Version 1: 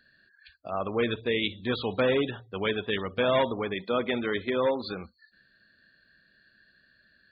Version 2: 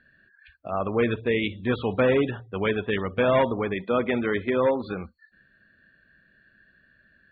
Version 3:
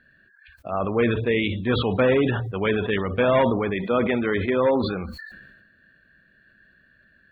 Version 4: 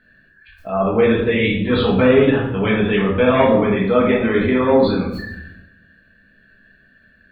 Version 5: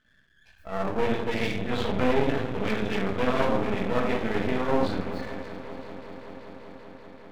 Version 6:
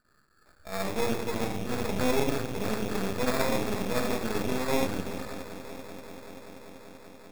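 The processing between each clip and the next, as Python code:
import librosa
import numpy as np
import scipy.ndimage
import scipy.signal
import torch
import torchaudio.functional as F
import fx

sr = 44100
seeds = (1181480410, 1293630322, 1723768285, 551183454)

y1 = scipy.signal.sosfilt(scipy.signal.butter(4, 2800.0, 'lowpass', fs=sr, output='sos'), x)
y1 = fx.low_shelf(y1, sr, hz=200.0, db=4.5)
y1 = F.gain(torch.from_numpy(y1), 3.0).numpy()
y2 = fx.sustainer(y1, sr, db_per_s=42.0)
y2 = F.gain(torch.from_numpy(y2), 1.5).numpy()
y3 = fx.room_shoebox(y2, sr, seeds[0], volume_m3=190.0, walls='mixed', distance_m=1.5)
y4 = fx.echo_heads(y3, sr, ms=193, heads='second and third', feedback_pct=74, wet_db=-16.0)
y4 = np.maximum(y4, 0.0)
y4 = F.gain(torch.from_numpy(y4), -7.0).numpy()
y5 = fx.sample_hold(y4, sr, seeds[1], rate_hz=3000.0, jitter_pct=0)
y5 = F.gain(torch.from_numpy(y5), -3.0).numpy()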